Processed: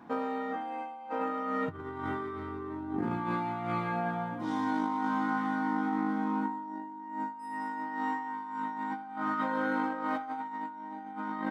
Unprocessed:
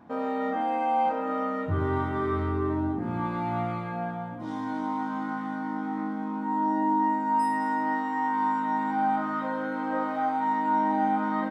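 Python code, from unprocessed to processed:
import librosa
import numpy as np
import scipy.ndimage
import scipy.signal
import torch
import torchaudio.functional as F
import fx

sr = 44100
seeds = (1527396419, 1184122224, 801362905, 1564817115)

y = fx.over_compress(x, sr, threshold_db=-31.0, ratio=-0.5)
y = fx.highpass(y, sr, hz=240.0, slope=6)
y = fx.peak_eq(y, sr, hz=610.0, db=-7.0, octaves=0.37)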